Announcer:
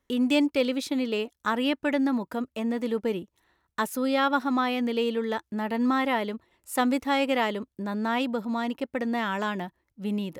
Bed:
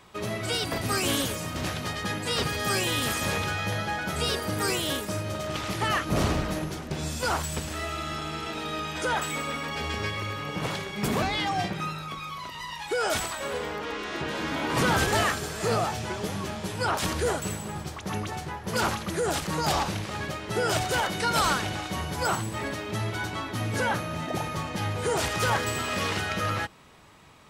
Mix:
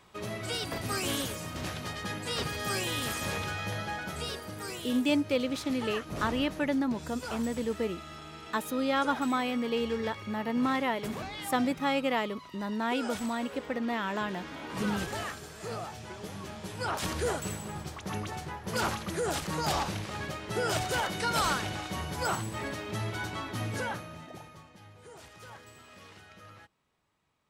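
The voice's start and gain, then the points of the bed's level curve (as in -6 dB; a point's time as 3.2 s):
4.75 s, -4.0 dB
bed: 3.96 s -5.5 dB
4.55 s -12 dB
15.89 s -12 dB
17.22 s -4 dB
23.64 s -4 dB
24.81 s -23.5 dB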